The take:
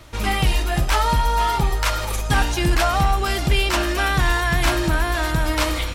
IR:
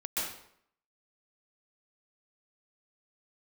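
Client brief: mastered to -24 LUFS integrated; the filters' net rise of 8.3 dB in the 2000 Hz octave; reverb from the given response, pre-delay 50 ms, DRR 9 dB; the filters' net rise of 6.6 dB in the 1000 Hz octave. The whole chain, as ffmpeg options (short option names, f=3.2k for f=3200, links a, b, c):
-filter_complex "[0:a]equalizer=f=1k:t=o:g=6,equalizer=f=2k:t=o:g=8.5,asplit=2[a][b];[1:a]atrim=start_sample=2205,adelay=50[c];[b][c]afir=irnorm=-1:irlink=0,volume=-14.5dB[d];[a][d]amix=inputs=2:normalize=0,volume=-9dB"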